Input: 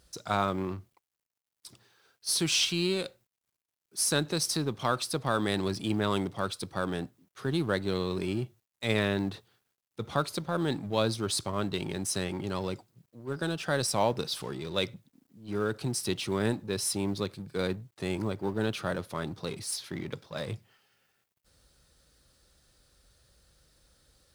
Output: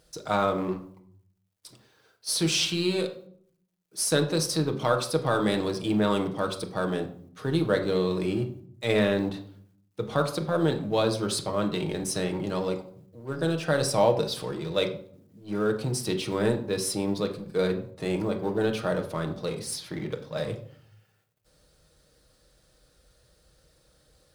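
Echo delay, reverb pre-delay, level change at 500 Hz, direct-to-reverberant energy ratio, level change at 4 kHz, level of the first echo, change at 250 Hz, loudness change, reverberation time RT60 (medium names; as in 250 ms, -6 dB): no echo, 6 ms, +6.0 dB, 4.0 dB, +1.0 dB, no echo, +4.0 dB, +3.5 dB, 0.60 s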